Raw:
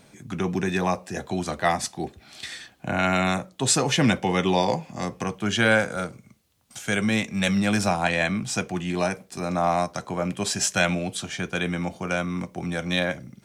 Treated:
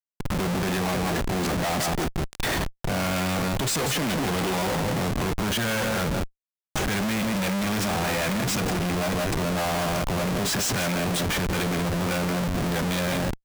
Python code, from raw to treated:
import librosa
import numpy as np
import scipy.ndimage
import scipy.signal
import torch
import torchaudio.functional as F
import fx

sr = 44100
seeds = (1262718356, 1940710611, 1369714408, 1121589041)

p1 = x + fx.echo_multitap(x, sr, ms=(162, 180), db=(-18.0, -11.0), dry=0)
y = fx.schmitt(p1, sr, flips_db=-35.0)